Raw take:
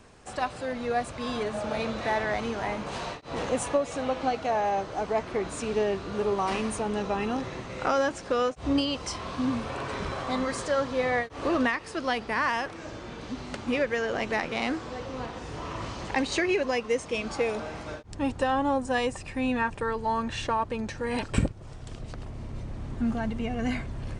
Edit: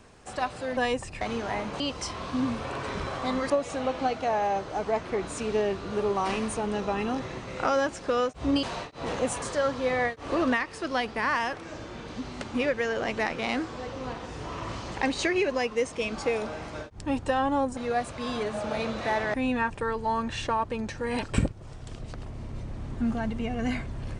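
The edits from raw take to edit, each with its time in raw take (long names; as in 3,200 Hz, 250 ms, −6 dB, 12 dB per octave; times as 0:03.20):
0:00.77–0:02.34: swap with 0:18.90–0:19.34
0:02.93–0:03.72: swap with 0:08.85–0:10.55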